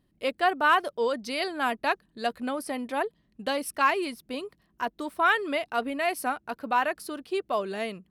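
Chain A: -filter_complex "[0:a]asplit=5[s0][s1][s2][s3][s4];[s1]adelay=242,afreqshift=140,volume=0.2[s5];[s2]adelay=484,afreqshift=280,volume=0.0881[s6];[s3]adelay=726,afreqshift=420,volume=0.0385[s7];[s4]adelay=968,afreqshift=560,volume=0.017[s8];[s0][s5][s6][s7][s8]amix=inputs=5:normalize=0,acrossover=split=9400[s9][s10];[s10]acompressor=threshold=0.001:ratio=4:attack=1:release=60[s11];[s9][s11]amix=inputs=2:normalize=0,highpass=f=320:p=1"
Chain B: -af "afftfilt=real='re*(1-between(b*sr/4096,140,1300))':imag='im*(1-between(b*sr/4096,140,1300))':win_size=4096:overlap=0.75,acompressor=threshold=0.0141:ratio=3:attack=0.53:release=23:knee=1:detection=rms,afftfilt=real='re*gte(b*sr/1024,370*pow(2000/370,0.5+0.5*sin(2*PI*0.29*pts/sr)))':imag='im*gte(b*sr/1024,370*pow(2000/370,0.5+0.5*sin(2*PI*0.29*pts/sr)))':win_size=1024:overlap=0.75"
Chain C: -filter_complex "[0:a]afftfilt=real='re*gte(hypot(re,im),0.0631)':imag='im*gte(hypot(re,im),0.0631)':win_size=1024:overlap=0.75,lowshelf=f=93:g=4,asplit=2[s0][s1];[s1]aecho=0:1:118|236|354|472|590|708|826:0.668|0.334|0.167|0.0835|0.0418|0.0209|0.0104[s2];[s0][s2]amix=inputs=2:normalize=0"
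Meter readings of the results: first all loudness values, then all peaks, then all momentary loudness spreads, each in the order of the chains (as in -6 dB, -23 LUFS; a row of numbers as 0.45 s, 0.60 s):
-29.0 LUFS, -42.0 LUFS, -26.5 LUFS; -10.5 dBFS, -28.0 dBFS, -9.5 dBFS; 11 LU, 7 LU, 10 LU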